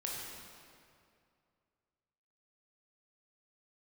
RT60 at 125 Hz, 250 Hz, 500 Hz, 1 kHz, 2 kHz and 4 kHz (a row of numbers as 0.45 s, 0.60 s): 2.6 s, 2.5 s, 2.4 s, 2.3 s, 2.0 s, 1.7 s